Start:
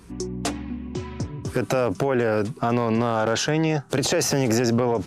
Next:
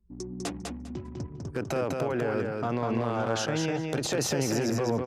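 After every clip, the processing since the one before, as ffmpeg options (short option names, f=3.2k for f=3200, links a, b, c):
-filter_complex "[0:a]anlmdn=10,asplit=2[a][b];[b]aecho=0:1:200|400|600:0.668|0.127|0.0241[c];[a][c]amix=inputs=2:normalize=0,volume=-8dB"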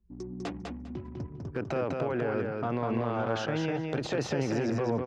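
-af "lowpass=3.4k,volume=-1.5dB"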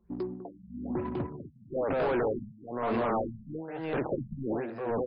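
-filter_complex "[0:a]tremolo=f=0.95:d=0.93,asplit=2[a][b];[b]highpass=f=720:p=1,volume=28dB,asoftclip=type=tanh:threshold=-18dB[c];[a][c]amix=inputs=2:normalize=0,lowpass=f=1.3k:p=1,volume=-6dB,afftfilt=real='re*lt(b*sr/1024,220*pow(5200/220,0.5+0.5*sin(2*PI*1.1*pts/sr)))':imag='im*lt(b*sr/1024,220*pow(5200/220,0.5+0.5*sin(2*PI*1.1*pts/sr)))':win_size=1024:overlap=0.75,volume=-2dB"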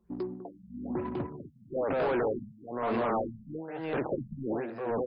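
-af "lowshelf=f=100:g=-6"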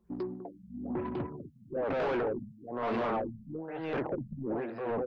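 -af "asoftclip=type=tanh:threshold=-26dB"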